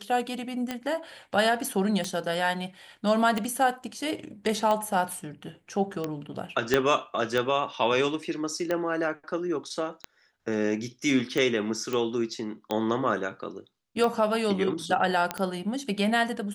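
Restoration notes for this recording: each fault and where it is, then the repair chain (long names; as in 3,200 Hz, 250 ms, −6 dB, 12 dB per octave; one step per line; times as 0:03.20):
scratch tick 45 rpm −15 dBFS
0:06.74: click −8 dBFS
0:11.93: click −17 dBFS
0:15.31: click −12 dBFS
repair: click removal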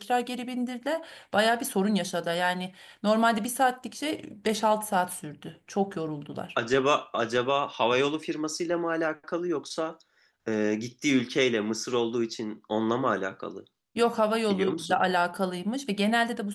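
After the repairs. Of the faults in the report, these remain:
0:06.74: click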